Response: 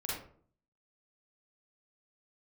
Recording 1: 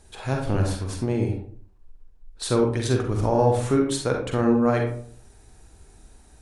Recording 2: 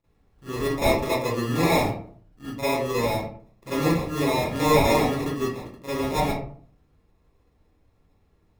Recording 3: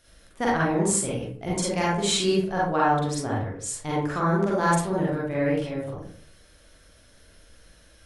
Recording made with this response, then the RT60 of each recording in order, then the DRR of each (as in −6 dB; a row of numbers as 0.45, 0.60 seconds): 3; 0.50, 0.50, 0.50 seconds; 1.5, −15.0, −6.5 decibels